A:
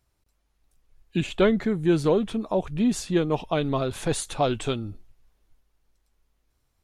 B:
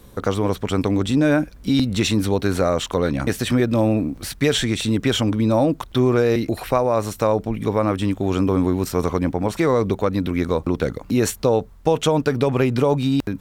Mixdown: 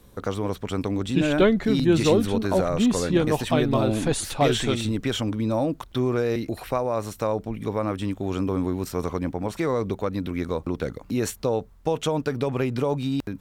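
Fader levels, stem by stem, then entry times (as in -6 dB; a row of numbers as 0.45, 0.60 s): +1.5, -6.5 dB; 0.00, 0.00 s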